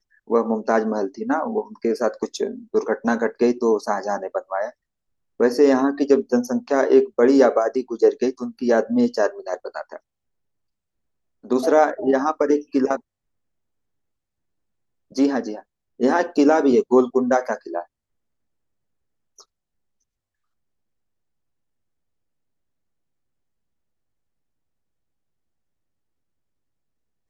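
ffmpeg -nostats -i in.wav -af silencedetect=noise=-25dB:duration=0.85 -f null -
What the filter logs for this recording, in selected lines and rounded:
silence_start: 9.96
silence_end: 11.51 | silence_duration: 1.55
silence_start: 12.96
silence_end: 15.17 | silence_duration: 2.21
silence_start: 17.81
silence_end: 27.30 | silence_duration: 9.49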